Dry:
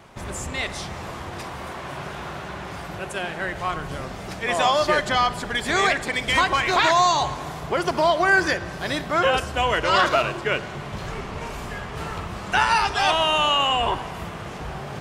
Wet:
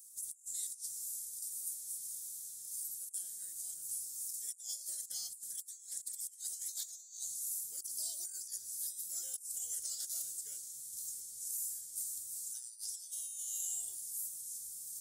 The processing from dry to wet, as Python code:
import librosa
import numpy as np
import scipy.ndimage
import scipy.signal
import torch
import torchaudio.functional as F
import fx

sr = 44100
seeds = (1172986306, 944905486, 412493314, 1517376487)

y = scipy.signal.sosfilt(scipy.signal.cheby2(4, 60, 2800.0, 'highpass', fs=sr, output='sos'), x)
y = fx.over_compress(y, sr, threshold_db=-54.0, ratio=-0.5)
y = y * librosa.db_to_amplitude(12.5)